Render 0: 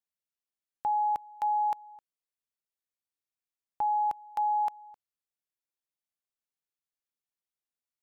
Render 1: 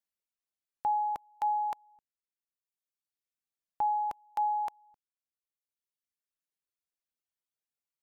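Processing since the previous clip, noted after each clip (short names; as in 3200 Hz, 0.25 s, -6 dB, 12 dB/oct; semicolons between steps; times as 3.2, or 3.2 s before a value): reverb removal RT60 1.6 s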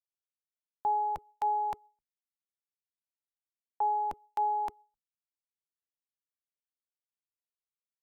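octaver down 1 oct, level +3 dB; gate with hold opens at -54 dBFS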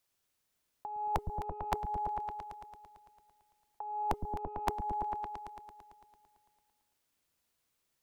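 negative-ratio compressor -37 dBFS, ratio -0.5; repeats that get brighter 0.112 s, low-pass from 200 Hz, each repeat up 1 oct, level 0 dB; gain +5.5 dB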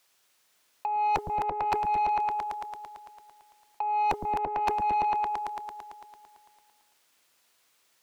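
overdrive pedal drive 21 dB, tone 7500 Hz, clips at -17.5 dBFS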